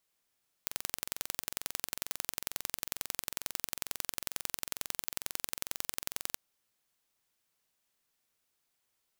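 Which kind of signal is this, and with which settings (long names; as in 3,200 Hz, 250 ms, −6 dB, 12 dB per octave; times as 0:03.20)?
impulse train 22.2 per second, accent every 2, −5 dBFS 5.68 s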